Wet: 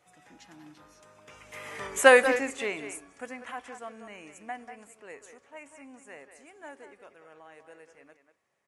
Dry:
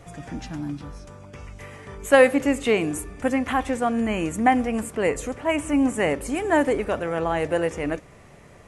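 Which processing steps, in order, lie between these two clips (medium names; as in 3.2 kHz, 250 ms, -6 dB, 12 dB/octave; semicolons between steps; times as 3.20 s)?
Doppler pass-by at 1.86 s, 15 m/s, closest 2.5 m; high-pass 860 Hz 6 dB/octave; speakerphone echo 190 ms, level -9 dB; trim +7.5 dB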